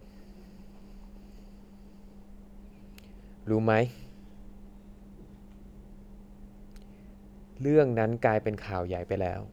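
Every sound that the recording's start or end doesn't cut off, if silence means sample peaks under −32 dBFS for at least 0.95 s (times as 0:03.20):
0:02.98–0:03.88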